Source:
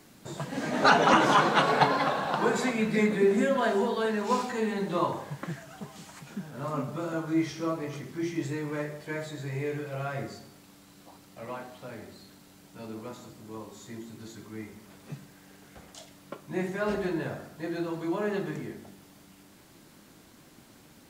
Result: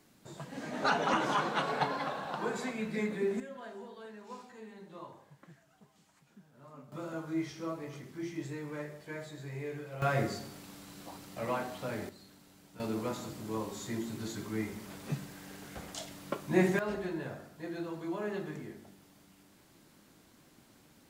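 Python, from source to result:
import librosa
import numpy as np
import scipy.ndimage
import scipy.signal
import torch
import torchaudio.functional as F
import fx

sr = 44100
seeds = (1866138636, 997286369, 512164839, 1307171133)

y = fx.gain(x, sr, db=fx.steps((0.0, -9.0), (3.4, -20.0), (6.92, -7.5), (10.02, 4.5), (12.09, -5.0), (12.8, 5.0), (16.79, -6.5)))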